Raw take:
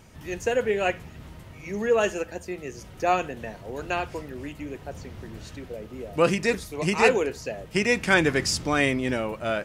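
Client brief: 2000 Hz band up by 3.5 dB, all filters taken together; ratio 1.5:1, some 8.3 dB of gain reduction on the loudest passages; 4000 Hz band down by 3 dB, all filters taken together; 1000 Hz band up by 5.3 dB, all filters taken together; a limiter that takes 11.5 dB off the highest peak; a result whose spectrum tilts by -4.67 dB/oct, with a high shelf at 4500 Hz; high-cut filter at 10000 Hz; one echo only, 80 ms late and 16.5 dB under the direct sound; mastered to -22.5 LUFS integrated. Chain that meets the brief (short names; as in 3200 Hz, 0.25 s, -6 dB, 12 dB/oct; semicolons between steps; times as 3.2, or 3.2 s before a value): LPF 10000 Hz; bell 1000 Hz +7 dB; bell 2000 Hz +3.5 dB; bell 4000 Hz -8.5 dB; high shelf 4500 Hz +3.5 dB; compressor 1.5:1, threshold -35 dBFS; limiter -20.5 dBFS; echo 80 ms -16.5 dB; gain +10.5 dB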